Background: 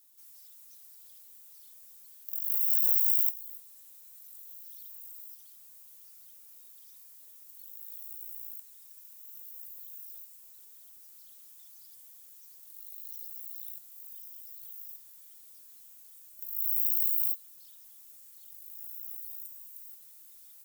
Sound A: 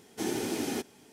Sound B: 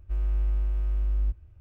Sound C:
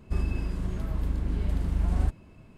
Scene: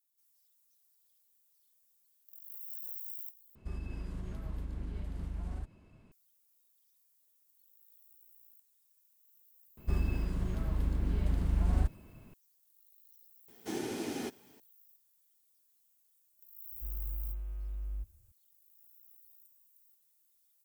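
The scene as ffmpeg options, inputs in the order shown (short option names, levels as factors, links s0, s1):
-filter_complex "[3:a]asplit=2[s0][s1];[0:a]volume=0.126[s2];[s0]alimiter=limit=0.075:level=0:latency=1:release=84[s3];[1:a]highshelf=f=6000:g=-4.5[s4];[s2]asplit=2[s5][s6];[s5]atrim=end=3.554[s7];[s3]atrim=end=2.57,asetpts=PTS-STARTPTS,volume=0.376[s8];[s6]atrim=start=6.116[s9];[s1]atrim=end=2.57,asetpts=PTS-STARTPTS,volume=0.708,afade=t=in:d=0.004:c=hsin,afade=t=out:st=2.566:d=0.004:c=hsin,adelay=9770[s10];[s4]atrim=end=1.12,asetpts=PTS-STARTPTS,volume=0.562,afade=t=in:d=0.004:c=hsin,afade=t=out:st=1.116:d=0.004:c=hsin,adelay=594468S[s11];[2:a]atrim=end=1.6,asetpts=PTS-STARTPTS,volume=0.224,afade=t=in:d=0.004:c=hsin,afade=t=out:st=1.596:d=0.004:c=hsin,adelay=16720[s12];[s7][s8]acrossfade=d=0.004:c1=hsin:c2=hsin[s13];[s13][s9]acrossfade=d=0.004:c1=hsin:c2=hsin[s14];[s14][s10][s11][s12]amix=inputs=4:normalize=0"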